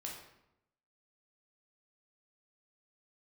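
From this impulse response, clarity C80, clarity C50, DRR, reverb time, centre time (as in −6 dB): 6.5 dB, 3.5 dB, −2.0 dB, 0.85 s, 42 ms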